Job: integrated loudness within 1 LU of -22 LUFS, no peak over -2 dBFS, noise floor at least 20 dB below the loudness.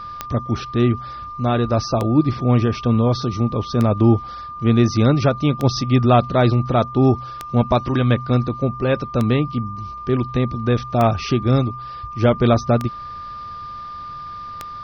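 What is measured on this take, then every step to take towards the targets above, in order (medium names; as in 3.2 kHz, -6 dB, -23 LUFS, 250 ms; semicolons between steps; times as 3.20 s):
clicks found 9; steady tone 1.2 kHz; tone level -30 dBFS; loudness -19.0 LUFS; peak level -3.5 dBFS; loudness target -22.0 LUFS
-> de-click; band-stop 1.2 kHz, Q 30; trim -3 dB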